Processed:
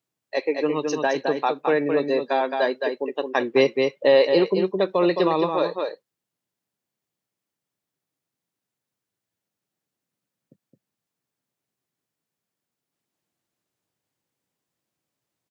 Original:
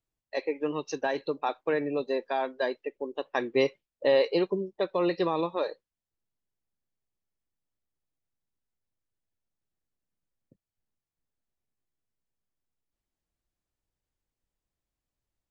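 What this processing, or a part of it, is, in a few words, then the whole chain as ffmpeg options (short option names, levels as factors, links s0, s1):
ducked delay: -filter_complex "[0:a]highpass=f=120:w=0.5412,highpass=f=120:w=1.3066,asplit=3[s0][s1][s2];[s1]adelay=216,volume=0.631[s3];[s2]apad=whole_len=693157[s4];[s3][s4]sidechaincompress=threshold=0.0398:ratio=8:attack=16:release=172[s5];[s0][s5]amix=inputs=2:normalize=0,volume=2.11"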